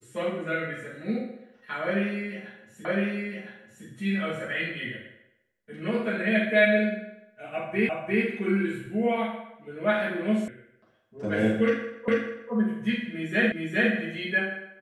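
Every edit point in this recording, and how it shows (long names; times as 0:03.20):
0:02.85: the same again, the last 1.01 s
0:07.89: the same again, the last 0.35 s
0:10.48: cut off before it has died away
0:12.08: the same again, the last 0.44 s
0:13.52: the same again, the last 0.41 s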